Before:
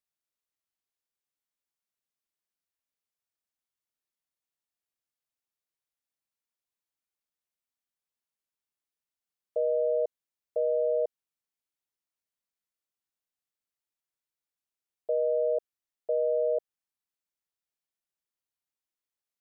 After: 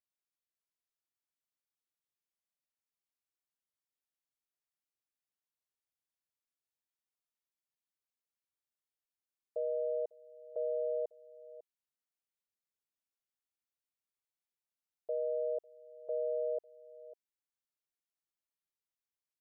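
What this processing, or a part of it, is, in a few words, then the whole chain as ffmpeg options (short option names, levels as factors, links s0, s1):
ducked delay: -filter_complex "[0:a]asplit=3[s0][s1][s2];[s1]adelay=549,volume=0.562[s3];[s2]apad=whole_len=879948[s4];[s3][s4]sidechaincompress=threshold=0.00447:ratio=6:attack=16:release=725[s5];[s0][s5]amix=inputs=2:normalize=0,volume=0.398"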